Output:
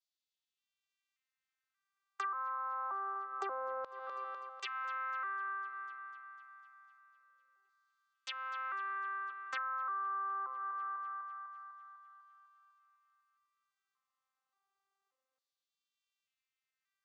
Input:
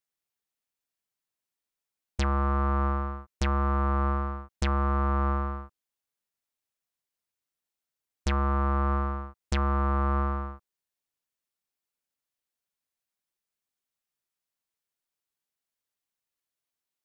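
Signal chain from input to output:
vocoder with an arpeggio as carrier bare fifth, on C4, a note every 581 ms
parametric band 1,200 Hz +7.5 dB 0.47 octaves
in parallel at +2 dB: brickwall limiter −26 dBFS, peak gain reduction 7 dB
on the sum: auto-filter high-pass saw down 0.26 Hz 510–4,200 Hz
on a send: feedback echo with a high-pass in the loop 250 ms, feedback 66%, high-pass 440 Hz, level −16 dB
on the sum: downward compressor 12 to 1, threshold −33 dBFS, peak gain reduction 19 dB
level −3.5 dB

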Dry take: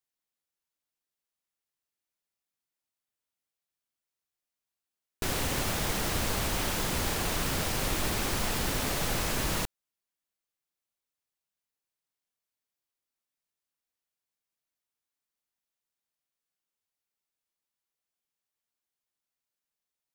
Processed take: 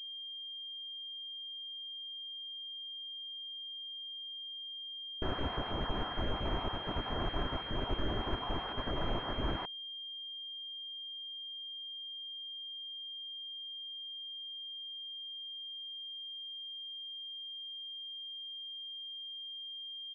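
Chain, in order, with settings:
time-frequency cells dropped at random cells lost 34%
comb filter 3 ms, depth 32%
switching amplifier with a slow clock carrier 3,200 Hz
level −3 dB

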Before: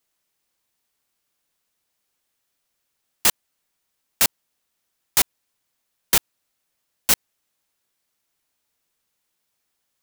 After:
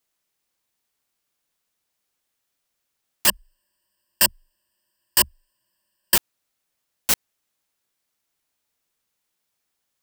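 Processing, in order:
0:03.27–0:06.16: EQ curve with evenly spaced ripples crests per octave 1.3, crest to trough 17 dB
level −2 dB

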